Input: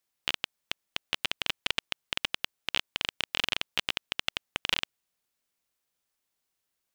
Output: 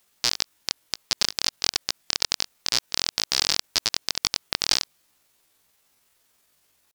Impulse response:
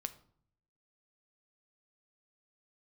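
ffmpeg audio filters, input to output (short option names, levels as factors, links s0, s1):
-af "asetrate=72056,aresample=44100,atempo=0.612027,alimiter=level_in=10:limit=0.891:release=50:level=0:latency=1,volume=0.891"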